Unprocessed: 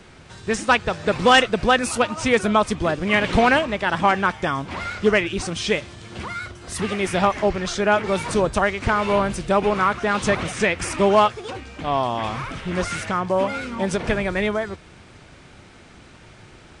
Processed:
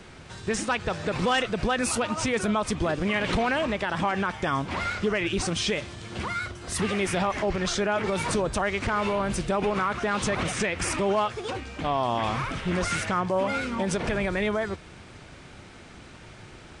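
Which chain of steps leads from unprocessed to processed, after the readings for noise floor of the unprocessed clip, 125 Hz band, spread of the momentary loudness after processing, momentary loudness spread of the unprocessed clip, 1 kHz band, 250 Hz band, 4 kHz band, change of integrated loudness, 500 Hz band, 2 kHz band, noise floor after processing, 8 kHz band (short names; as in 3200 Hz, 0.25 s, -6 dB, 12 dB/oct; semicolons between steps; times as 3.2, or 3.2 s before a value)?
-47 dBFS, -3.0 dB, 20 LU, 12 LU, -7.0 dB, -4.5 dB, -5.0 dB, -6.0 dB, -6.5 dB, -6.5 dB, -47 dBFS, -1.0 dB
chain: limiter -17 dBFS, peak gain reduction 11 dB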